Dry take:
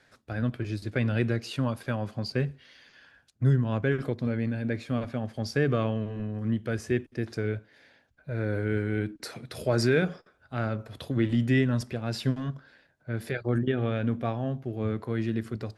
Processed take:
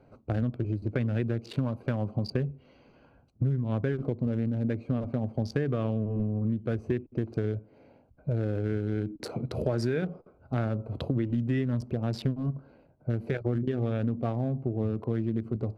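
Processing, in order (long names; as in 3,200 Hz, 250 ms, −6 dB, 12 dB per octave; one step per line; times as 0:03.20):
adaptive Wiener filter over 25 samples
tilt shelving filter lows +3 dB
downward compressor 6 to 1, threshold −34 dBFS, peak gain reduction 17 dB
level +8 dB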